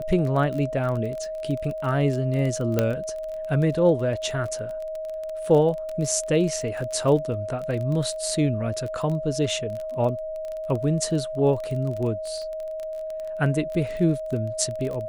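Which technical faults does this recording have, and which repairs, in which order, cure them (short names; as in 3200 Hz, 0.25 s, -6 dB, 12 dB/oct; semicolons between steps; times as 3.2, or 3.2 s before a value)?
crackle 22/s -29 dBFS
tone 630 Hz -29 dBFS
2.79 pop -8 dBFS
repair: de-click; notch 630 Hz, Q 30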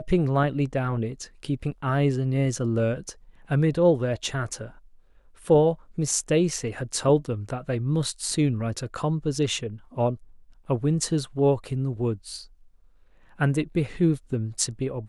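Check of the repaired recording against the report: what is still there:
none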